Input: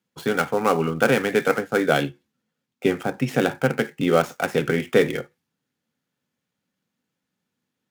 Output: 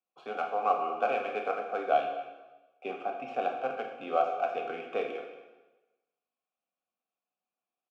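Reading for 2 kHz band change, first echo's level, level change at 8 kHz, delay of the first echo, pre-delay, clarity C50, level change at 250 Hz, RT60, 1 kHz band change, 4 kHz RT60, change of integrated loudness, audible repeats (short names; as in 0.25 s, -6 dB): -14.5 dB, -17.0 dB, under -25 dB, 0.231 s, 7 ms, 5.5 dB, -21.5 dB, 1.1 s, -2.0 dB, 1.0 s, -10.0 dB, 1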